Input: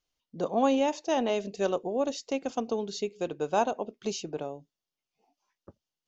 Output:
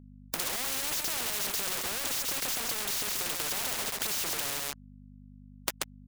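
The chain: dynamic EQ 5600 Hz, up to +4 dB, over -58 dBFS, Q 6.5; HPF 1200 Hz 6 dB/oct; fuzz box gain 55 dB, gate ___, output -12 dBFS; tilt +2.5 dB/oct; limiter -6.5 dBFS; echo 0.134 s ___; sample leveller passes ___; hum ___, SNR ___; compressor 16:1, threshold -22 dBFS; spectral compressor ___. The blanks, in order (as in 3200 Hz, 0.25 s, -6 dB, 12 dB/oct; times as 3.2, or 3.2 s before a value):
-59 dBFS, -18 dB, 5, 50 Hz, 35 dB, 4:1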